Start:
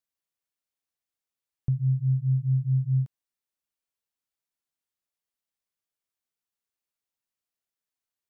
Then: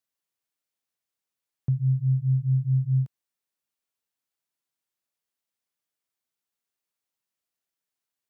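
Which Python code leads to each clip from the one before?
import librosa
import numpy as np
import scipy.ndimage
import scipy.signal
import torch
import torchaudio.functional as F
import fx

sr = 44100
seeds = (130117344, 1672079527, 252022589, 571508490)

y = scipy.signal.sosfilt(scipy.signal.butter(2, 91.0, 'highpass', fs=sr, output='sos'), x)
y = y * librosa.db_to_amplitude(2.0)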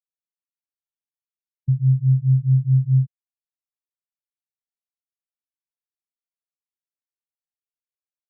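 y = fx.spectral_expand(x, sr, expansion=1.5)
y = y * librosa.db_to_amplitude(6.5)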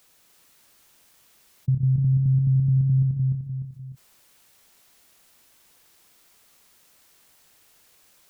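y = fx.level_steps(x, sr, step_db=10)
y = fx.echo_feedback(y, sr, ms=299, feedback_pct=17, wet_db=-5)
y = fx.env_flatten(y, sr, amount_pct=50)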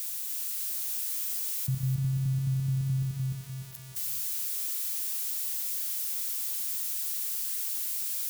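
y = x + 0.5 * 10.0 ** (-20.5 / 20.0) * np.diff(np.sign(x), prepend=np.sign(x[:1]))
y = fx.echo_feedback(y, sr, ms=282, feedback_pct=30, wet_db=-13.0)
y = y * librosa.db_to_amplitude(-8.0)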